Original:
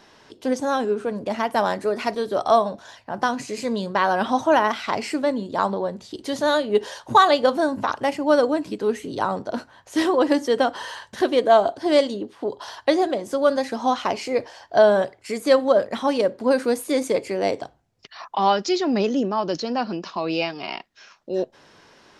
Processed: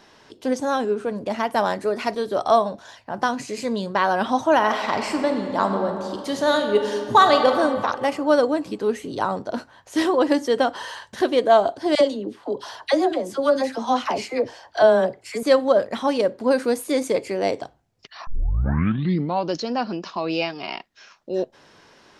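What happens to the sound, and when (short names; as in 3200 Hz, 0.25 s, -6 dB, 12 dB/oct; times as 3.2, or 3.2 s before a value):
4.55–7.53 reverb throw, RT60 2.3 s, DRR 4.5 dB
11.95–15.43 dispersion lows, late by 60 ms, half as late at 810 Hz
18.27 tape start 1.26 s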